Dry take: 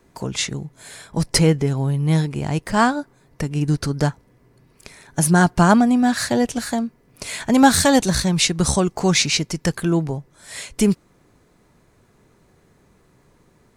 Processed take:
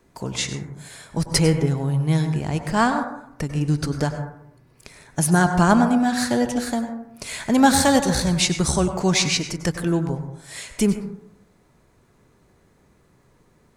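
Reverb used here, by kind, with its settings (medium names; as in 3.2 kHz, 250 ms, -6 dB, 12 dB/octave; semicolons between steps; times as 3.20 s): plate-style reverb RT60 0.74 s, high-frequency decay 0.3×, pre-delay 85 ms, DRR 7.5 dB; trim -2.5 dB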